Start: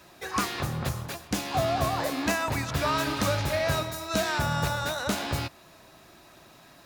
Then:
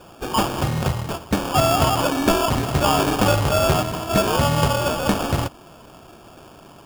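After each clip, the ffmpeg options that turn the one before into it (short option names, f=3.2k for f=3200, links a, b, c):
-af "acrusher=samples=22:mix=1:aa=0.000001,volume=8.5dB"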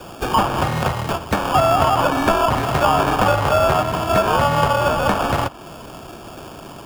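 -filter_complex "[0:a]acrossover=split=200|600|1700|3400[a][b][c][d][e];[a]acompressor=threshold=-33dB:ratio=4[f];[b]acompressor=threshold=-38dB:ratio=4[g];[c]acompressor=threshold=-22dB:ratio=4[h];[d]acompressor=threshold=-42dB:ratio=4[i];[e]acompressor=threshold=-44dB:ratio=4[j];[f][g][h][i][j]amix=inputs=5:normalize=0,volume=8.5dB"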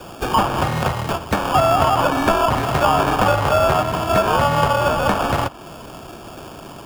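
-af anull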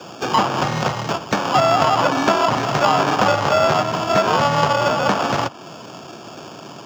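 -af "aeval=exprs='0.794*(cos(1*acos(clip(val(0)/0.794,-1,1)))-cos(1*PI/2))+0.0631*(cos(4*acos(clip(val(0)/0.794,-1,1)))-cos(4*PI/2))':c=same,highpass=f=120:w=0.5412,highpass=f=120:w=1.3066,highshelf=f=7.8k:t=q:w=3:g=-9.5"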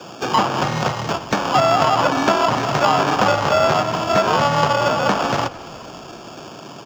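-filter_complex "[0:a]asplit=6[a][b][c][d][e][f];[b]adelay=212,afreqshift=-31,volume=-19.5dB[g];[c]adelay=424,afreqshift=-62,volume=-24.2dB[h];[d]adelay=636,afreqshift=-93,volume=-29dB[i];[e]adelay=848,afreqshift=-124,volume=-33.7dB[j];[f]adelay=1060,afreqshift=-155,volume=-38.4dB[k];[a][g][h][i][j][k]amix=inputs=6:normalize=0"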